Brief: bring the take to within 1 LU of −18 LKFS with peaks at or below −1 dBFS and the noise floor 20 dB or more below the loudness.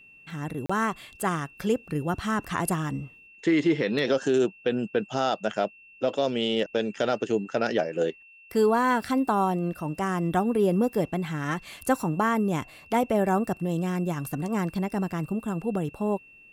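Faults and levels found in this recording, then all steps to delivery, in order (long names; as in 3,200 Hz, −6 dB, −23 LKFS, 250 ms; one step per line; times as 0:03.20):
number of dropouts 1; longest dropout 35 ms; interfering tone 2,700 Hz; level of the tone −50 dBFS; integrated loudness −27.0 LKFS; sample peak −9.0 dBFS; target loudness −18.0 LKFS
→ repair the gap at 0:00.66, 35 ms
notch filter 2,700 Hz, Q 30
level +9 dB
brickwall limiter −1 dBFS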